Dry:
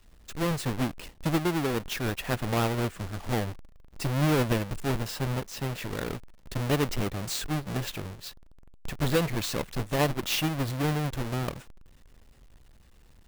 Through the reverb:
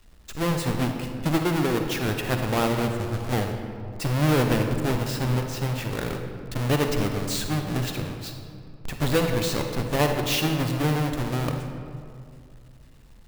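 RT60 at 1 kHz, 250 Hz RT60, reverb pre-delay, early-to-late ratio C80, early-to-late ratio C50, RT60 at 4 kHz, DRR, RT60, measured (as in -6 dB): 2.1 s, 2.9 s, 39 ms, 6.0 dB, 5.0 dB, 1.2 s, 4.5 dB, 2.3 s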